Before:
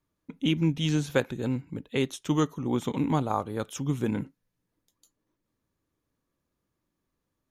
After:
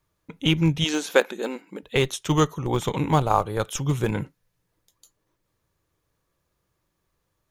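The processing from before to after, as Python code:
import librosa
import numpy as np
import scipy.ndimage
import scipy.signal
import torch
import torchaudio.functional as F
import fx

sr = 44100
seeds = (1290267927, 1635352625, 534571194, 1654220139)

p1 = fx.peak_eq(x, sr, hz=250.0, db=-13.5, octaves=0.6)
p2 = fx.schmitt(p1, sr, flips_db=-24.5)
p3 = p1 + F.gain(torch.from_numpy(p2), -8.5).numpy()
p4 = fx.brickwall_highpass(p3, sr, low_hz=190.0, at=(0.84, 1.83))
y = F.gain(torch.from_numpy(p4), 8.0).numpy()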